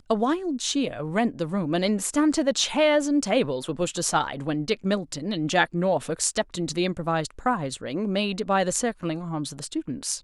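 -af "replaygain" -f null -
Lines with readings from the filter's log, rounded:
track_gain = +4.9 dB
track_peak = 0.387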